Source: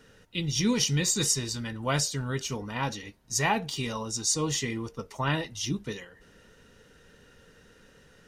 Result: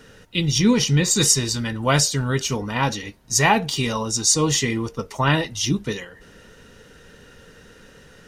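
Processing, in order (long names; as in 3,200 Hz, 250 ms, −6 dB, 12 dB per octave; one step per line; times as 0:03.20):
0:00.58–0:01.11: high-shelf EQ 3,300 Hz −8 dB
level +9 dB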